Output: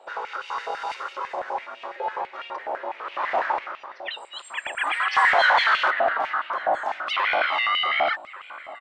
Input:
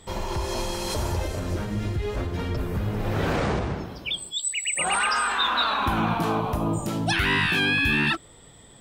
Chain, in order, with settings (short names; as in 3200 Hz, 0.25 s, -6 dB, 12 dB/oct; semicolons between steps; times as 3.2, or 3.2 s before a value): 5.13–5.91 power-law curve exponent 0.5; ring modulator 460 Hz; tape spacing loss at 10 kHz 27 dB; outdoor echo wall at 200 m, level -12 dB; stepped high-pass 12 Hz 730–2700 Hz; gain +3 dB